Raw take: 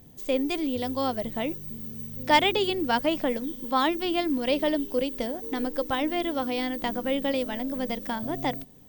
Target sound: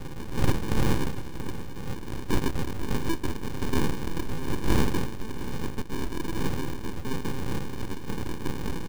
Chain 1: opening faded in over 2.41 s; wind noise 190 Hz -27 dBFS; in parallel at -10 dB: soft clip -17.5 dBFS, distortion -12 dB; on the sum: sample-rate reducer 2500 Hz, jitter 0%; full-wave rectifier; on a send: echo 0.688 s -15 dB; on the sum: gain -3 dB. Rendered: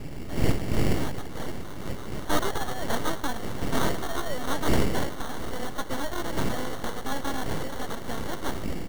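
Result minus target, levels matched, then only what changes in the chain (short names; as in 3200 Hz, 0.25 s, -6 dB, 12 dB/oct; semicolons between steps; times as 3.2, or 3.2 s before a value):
sample-rate reducer: distortion -9 dB
change: sample-rate reducer 660 Hz, jitter 0%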